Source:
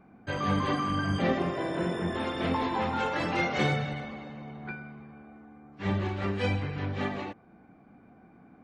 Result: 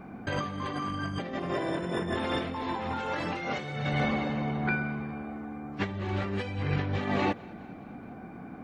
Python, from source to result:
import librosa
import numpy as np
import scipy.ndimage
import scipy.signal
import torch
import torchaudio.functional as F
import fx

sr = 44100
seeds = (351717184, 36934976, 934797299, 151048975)

y = fx.over_compress(x, sr, threshold_db=-37.0, ratio=-1.0)
y = fx.echo_feedback(y, sr, ms=208, feedback_pct=60, wet_db=-23)
y = y * librosa.db_to_amplitude(5.5)